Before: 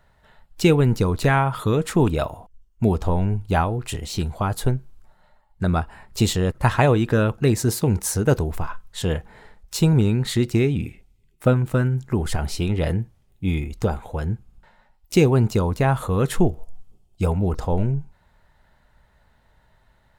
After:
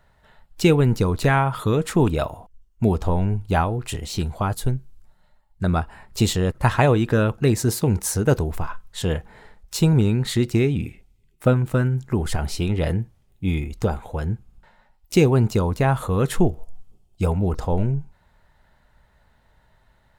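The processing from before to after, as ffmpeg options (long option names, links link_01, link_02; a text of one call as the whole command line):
ffmpeg -i in.wav -filter_complex "[0:a]asettb=1/sr,asplit=3[link_01][link_02][link_03];[link_01]atrim=end=4.544[link_04];[link_02]atrim=start=4.54:end=5.64,asetpts=PTS-STARTPTS,afade=type=in:duration=0.004:curve=qsin,afade=type=out:start_time=1.096:duration=0.004:curve=qsin,equalizer=frequency=880:width=0.38:gain=-7.5[link_05];[link_03]atrim=start=5.636[link_06];[link_04][link_05]acrossfade=duration=0.004:curve1=hsin:curve2=qsin[link_07];[link_07][link_06]acrossfade=duration=0.004:curve1=qsin:curve2=hsin" out.wav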